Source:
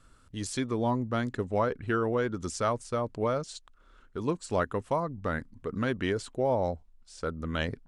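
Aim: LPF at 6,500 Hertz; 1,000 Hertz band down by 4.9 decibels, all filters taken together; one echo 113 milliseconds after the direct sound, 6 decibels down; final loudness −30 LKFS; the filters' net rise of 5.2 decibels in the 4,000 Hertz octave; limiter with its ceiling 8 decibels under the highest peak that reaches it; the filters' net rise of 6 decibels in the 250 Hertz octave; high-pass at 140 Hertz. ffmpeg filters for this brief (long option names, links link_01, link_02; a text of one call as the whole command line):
ffmpeg -i in.wav -af "highpass=140,lowpass=6500,equalizer=frequency=250:width_type=o:gain=8,equalizer=frequency=1000:width_type=o:gain=-7.5,equalizer=frequency=4000:width_type=o:gain=8,alimiter=limit=-21.5dB:level=0:latency=1,aecho=1:1:113:0.501,volume=2.5dB" out.wav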